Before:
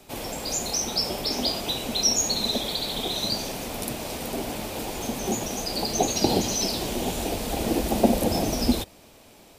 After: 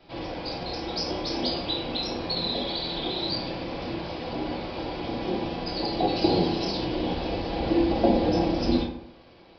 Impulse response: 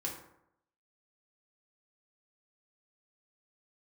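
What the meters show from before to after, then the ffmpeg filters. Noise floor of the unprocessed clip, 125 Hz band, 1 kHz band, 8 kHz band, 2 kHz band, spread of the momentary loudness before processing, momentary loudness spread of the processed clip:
−52 dBFS, +0.5 dB, 0.0 dB, below −25 dB, −1.5 dB, 9 LU, 10 LU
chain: -filter_complex "[1:a]atrim=start_sample=2205[link_01];[0:a][link_01]afir=irnorm=-1:irlink=0,aresample=11025,aresample=44100,volume=-2dB"

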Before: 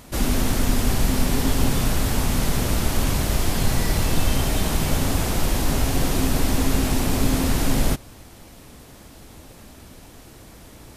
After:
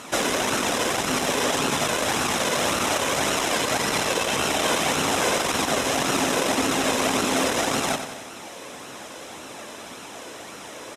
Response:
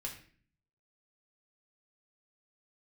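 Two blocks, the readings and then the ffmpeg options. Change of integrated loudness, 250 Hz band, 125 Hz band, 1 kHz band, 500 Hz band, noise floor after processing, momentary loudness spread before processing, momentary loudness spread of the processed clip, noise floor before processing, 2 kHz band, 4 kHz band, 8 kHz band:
+0.5 dB, −3.5 dB, −13.0 dB, +6.0 dB, +4.5 dB, −40 dBFS, 1 LU, 16 LU, −45 dBFS, +6.5 dB, +4.5 dB, +3.0 dB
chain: -filter_complex "[0:a]aeval=exprs='0.531*sin(PI/2*2.82*val(0)/0.531)':channel_layout=same,acompressor=threshold=-10dB:ratio=6,flanger=delay=0.7:depth=1.3:regen=47:speed=1.8:shape=sinusoidal,highpass=360,lowpass=7800,bandreject=frequency=4500:width=5.4,asplit=2[link_01][link_02];[link_02]aecho=0:1:92|184|276|368|460|552:0.355|0.188|0.0997|0.0528|0.028|0.0148[link_03];[link_01][link_03]amix=inputs=2:normalize=0,volume=2dB"

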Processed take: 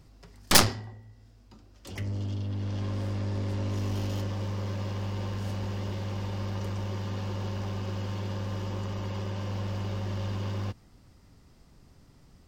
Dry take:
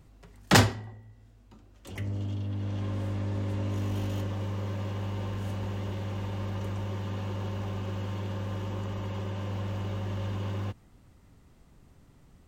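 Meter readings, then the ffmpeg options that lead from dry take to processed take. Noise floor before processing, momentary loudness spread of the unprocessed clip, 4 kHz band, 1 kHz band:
−58 dBFS, 4 LU, +4.0 dB, −1.0 dB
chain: -af "equalizer=frequency=5000:width_type=o:width=0.47:gain=9.5,aeval=exprs='0.794*(cos(1*acos(clip(val(0)/0.794,-1,1)))-cos(1*PI/2))+0.158*(cos(5*acos(clip(val(0)/0.794,-1,1)))-cos(5*PI/2))+0.2*(cos(6*acos(clip(val(0)/0.794,-1,1)))-cos(6*PI/2))+0.398*(cos(7*acos(clip(val(0)/0.794,-1,1)))-cos(7*PI/2))':channel_layout=same,volume=-3dB"

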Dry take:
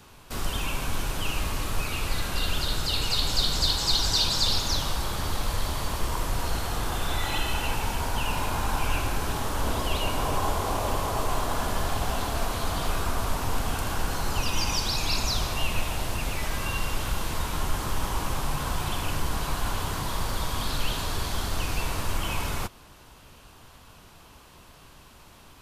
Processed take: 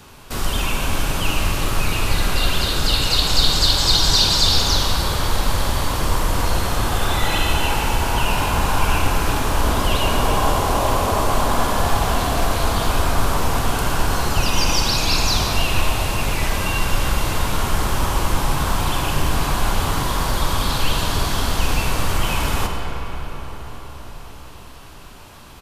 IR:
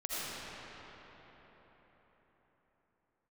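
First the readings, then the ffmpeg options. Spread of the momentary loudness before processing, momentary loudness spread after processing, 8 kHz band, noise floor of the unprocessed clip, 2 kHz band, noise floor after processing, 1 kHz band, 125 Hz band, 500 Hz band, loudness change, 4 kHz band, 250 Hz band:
7 LU, 7 LU, +8.0 dB, −51 dBFS, +9.0 dB, −38 dBFS, +9.0 dB, +9.0 dB, +9.0 dB, +8.5 dB, +8.5 dB, +9.0 dB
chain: -filter_complex "[0:a]asplit=2[link_01][link_02];[link_02]adelay=46,volume=-12.5dB[link_03];[link_01][link_03]amix=inputs=2:normalize=0,asplit=2[link_04][link_05];[1:a]atrim=start_sample=2205,asetrate=37926,aresample=44100[link_06];[link_05][link_06]afir=irnorm=-1:irlink=0,volume=-8dB[link_07];[link_04][link_07]amix=inputs=2:normalize=0,volume=5dB"

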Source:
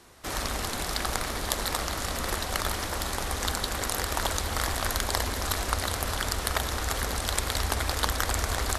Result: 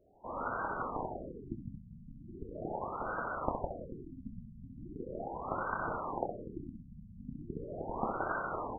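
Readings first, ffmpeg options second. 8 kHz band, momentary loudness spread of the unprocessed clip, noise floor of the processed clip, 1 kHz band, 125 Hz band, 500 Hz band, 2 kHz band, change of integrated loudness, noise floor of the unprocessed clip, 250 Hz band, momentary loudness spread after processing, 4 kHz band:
below −40 dB, 3 LU, −53 dBFS, −6.0 dB, −13.0 dB, −5.0 dB, −12.0 dB, −10.5 dB, −33 dBFS, −4.5 dB, 14 LU, below −40 dB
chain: -af "flanger=delay=2.9:depth=7:regen=-46:speed=0.27:shape=triangular,aecho=1:1:26|65:0.422|0.501,lowpass=frequency=3200:width_type=q:width=0.5098,lowpass=frequency=3200:width_type=q:width=0.6013,lowpass=frequency=3200:width_type=q:width=0.9,lowpass=frequency=3200:width_type=q:width=2.563,afreqshift=-3800,afftfilt=real='re*lt(b*sr/1024,240*pow(1600/240,0.5+0.5*sin(2*PI*0.39*pts/sr)))':imag='im*lt(b*sr/1024,240*pow(1600/240,0.5+0.5*sin(2*PI*0.39*pts/sr)))':win_size=1024:overlap=0.75,volume=11.5dB"

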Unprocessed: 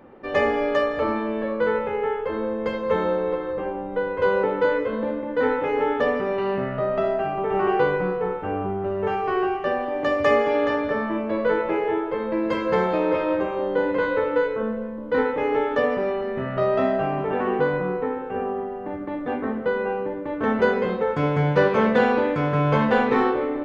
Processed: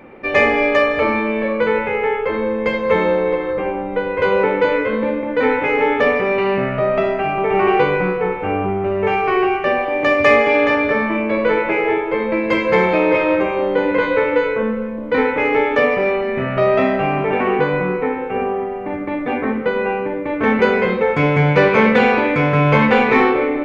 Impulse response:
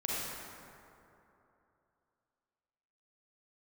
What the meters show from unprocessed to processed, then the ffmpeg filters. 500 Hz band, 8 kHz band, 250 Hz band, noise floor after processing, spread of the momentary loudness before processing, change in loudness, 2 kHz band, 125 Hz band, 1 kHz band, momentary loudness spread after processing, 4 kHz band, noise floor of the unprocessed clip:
+5.5 dB, can't be measured, +6.0 dB, −24 dBFS, 8 LU, +6.5 dB, +10.0 dB, +6.5 dB, +6.0 dB, 8 LU, +8.5 dB, −31 dBFS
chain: -filter_complex "[0:a]equalizer=frequency=2300:width=4.2:gain=14,bandreject=frequency=82.49:width_type=h:width=4,bandreject=frequency=164.98:width_type=h:width=4,bandreject=frequency=247.47:width_type=h:width=4,bandreject=frequency=329.96:width_type=h:width=4,bandreject=frequency=412.45:width_type=h:width=4,bandreject=frequency=494.94:width_type=h:width=4,bandreject=frequency=577.43:width_type=h:width=4,bandreject=frequency=659.92:width_type=h:width=4,bandreject=frequency=742.41:width_type=h:width=4,bandreject=frequency=824.9:width_type=h:width=4,bandreject=frequency=907.39:width_type=h:width=4,bandreject=frequency=989.88:width_type=h:width=4,bandreject=frequency=1072.37:width_type=h:width=4,bandreject=frequency=1154.86:width_type=h:width=4,bandreject=frequency=1237.35:width_type=h:width=4,bandreject=frequency=1319.84:width_type=h:width=4,bandreject=frequency=1402.33:width_type=h:width=4,bandreject=frequency=1484.82:width_type=h:width=4,bandreject=frequency=1567.31:width_type=h:width=4,bandreject=frequency=1649.8:width_type=h:width=4,bandreject=frequency=1732.29:width_type=h:width=4,bandreject=frequency=1814.78:width_type=h:width=4,bandreject=frequency=1897.27:width_type=h:width=4,bandreject=frequency=1979.76:width_type=h:width=4,bandreject=frequency=2062.25:width_type=h:width=4,bandreject=frequency=2144.74:width_type=h:width=4,bandreject=frequency=2227.23:width_type=h:width=4,bandreject=frequency=2309.72:width_type=h:width=4,bandreject=frequency=2392.21:width_type=h:width=4,bandreject=frequency=2474.7:width_type=h:width=4,bandreject=frequency=2557.19:width_type=h:width=4,bandreject=frequency=2639.68:width_type=h:width=4,bandreject=frequency=2722.17:width_type=h:width=4,bandreject=frequency=2804.66:width_type=h:width=4,bandreject=frequency=2887.15:width_type=h:width=4,bandreject=frequency=2969.64:width_type=h:width=4,bandreject=frequency=3052.13:width_type=h:width=4,bandreject=frequency=3134.62:width_type=h:width=4,asplit=2[link_01][link_02];[link_02]asoftclip=type=tanh:threshold=-13.5dB,volume=-5dB[link_03];[link_01][link_03]amix=inputs=2:normalize=0,volume=3dB"

